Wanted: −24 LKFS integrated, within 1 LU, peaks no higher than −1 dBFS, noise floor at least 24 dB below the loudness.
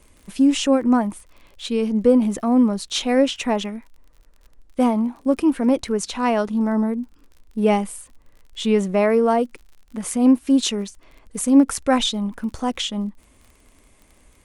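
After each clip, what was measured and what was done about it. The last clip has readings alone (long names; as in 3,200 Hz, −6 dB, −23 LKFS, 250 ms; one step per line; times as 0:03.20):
crackle rate 38 per second; integrated loudness −20.0 LKFS; sample peak −5.0 dBFS; target loudness −24.0 LKFS
→ click removal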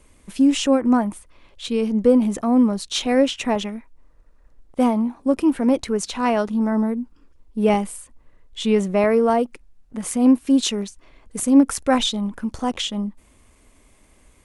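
crackle rate 0.21 per second; integrated loudness −20.0 LKFS; sample peak −5.0 dBFS; target loudness −24.0 LKFS
→ level −4 dB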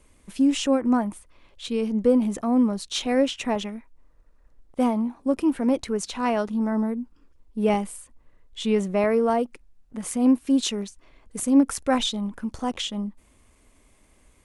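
integrated loudness −24.0 LKFS; sample peak −9.0 dBFS; background noise floor −59 dBFS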